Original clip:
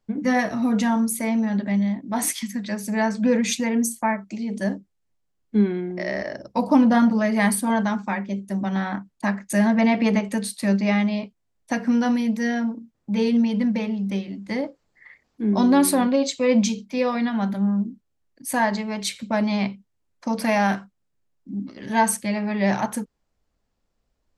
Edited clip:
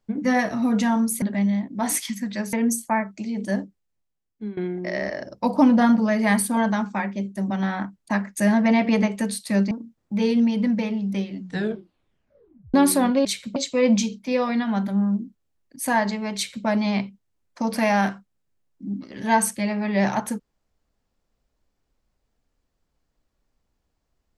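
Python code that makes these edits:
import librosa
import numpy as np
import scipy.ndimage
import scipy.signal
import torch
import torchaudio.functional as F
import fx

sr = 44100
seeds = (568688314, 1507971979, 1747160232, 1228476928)

y = fx.edit(x, sr, fx.cut(start_s=1.22, length_s=0.33),
    fx.cut(start_s=2.86, length_s=0.8),
    fx.fade_out_to(start_s=4.68, length_s=1.02, floor_db=-18.0),
    fx.cut(start_s=10.84, length_s=1.84),
    fx.tape_stop(start_s=14.34, length_s=1.37),
    fx.duplicate(start_s=19.01, length_s=0.31, to_s=16.22), tone=tone)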